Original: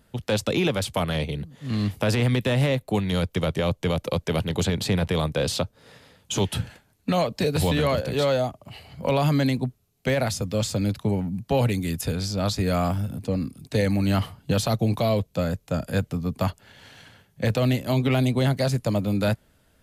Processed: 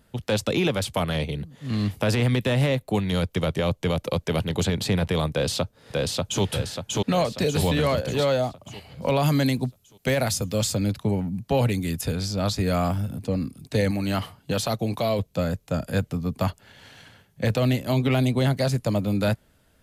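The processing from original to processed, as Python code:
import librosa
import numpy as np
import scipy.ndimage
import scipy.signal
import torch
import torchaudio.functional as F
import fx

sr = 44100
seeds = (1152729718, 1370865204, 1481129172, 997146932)

y = fx.echo_throw(x, sr, start_s=5.31, length_s=1.12, ms=590, feedback_pct=50, wet_db=-1.0)
y = fx.high_shelf(y, sr, hz=6100.0, db=8.0, at=(9.23, 10.75))
y = fx.low_shelf(y, sr, hz=200.0, db=-7.5, at=(13.91, 15.19))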